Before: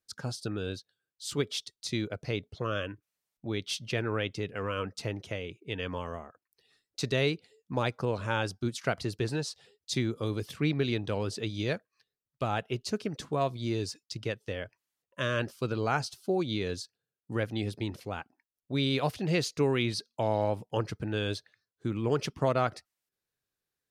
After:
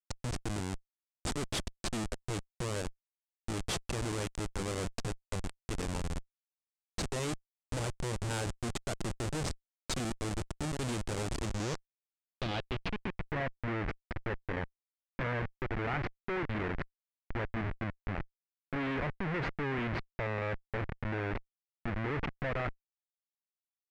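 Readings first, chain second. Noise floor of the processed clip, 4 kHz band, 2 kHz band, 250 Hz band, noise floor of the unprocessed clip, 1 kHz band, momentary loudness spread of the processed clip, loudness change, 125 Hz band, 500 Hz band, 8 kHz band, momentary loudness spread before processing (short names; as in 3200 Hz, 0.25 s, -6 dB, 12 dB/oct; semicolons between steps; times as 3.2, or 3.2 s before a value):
under -85 dBFS, -6.5 dB, -2.0 dB, -5.0 dB, under -85 dBFS, -4.5 dB, 6 LU, -5.0 dB, -3.5 dB, -7.5 dB, +0.5 dB, 11 LU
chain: Schmitt trigger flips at -32 dBFS; low-pass sweep 8400 Hz -> 2000 Hz, 11.37–13.3; gain -1 dB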